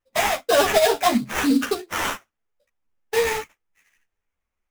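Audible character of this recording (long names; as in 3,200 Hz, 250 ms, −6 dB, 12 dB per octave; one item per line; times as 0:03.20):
aliases and images of a low sample rate 4,400 Hz, jitter 20%
a shimmering, thickened sound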